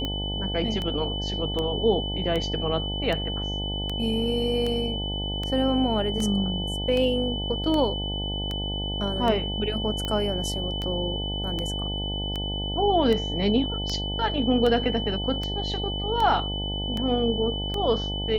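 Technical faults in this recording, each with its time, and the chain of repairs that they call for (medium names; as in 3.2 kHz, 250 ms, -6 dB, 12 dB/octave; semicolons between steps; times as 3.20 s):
buzz 50 Hz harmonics 18 -31 dBFS
tick 78 rpm -16 dBFS
whine 3 kHz -31 dBFS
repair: de-click; band-stop 3 kHz, Q 30; de-hum 50 Hz, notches 18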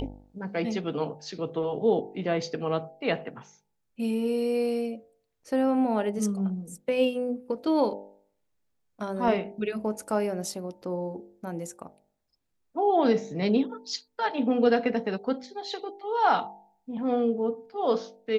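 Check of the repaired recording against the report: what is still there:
nothing left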